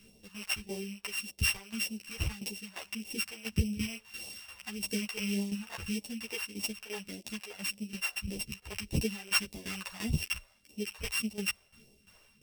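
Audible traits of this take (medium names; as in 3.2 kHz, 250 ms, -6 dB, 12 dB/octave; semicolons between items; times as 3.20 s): a buzz of ramps at a fixed pitch in blocks of 16 samples; phasing stages 2, 1.7 Hz, lowest notch 210–1400 Hz; tremolo saw down 2.9 Hz, depth 80%; a shimmering, thickened sound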